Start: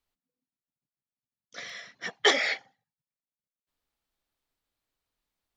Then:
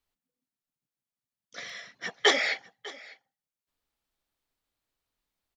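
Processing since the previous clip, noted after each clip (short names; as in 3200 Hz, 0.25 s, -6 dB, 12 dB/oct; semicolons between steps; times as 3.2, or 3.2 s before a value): echo 0.599 s -20 dB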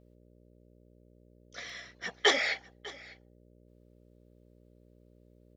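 buzz 60 Hz, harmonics 10, -58 dBFS -3 dB/oct; gain -2.5 dB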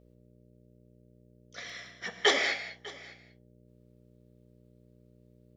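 non-linear reverb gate 0.23 s flat, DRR 7.5 dB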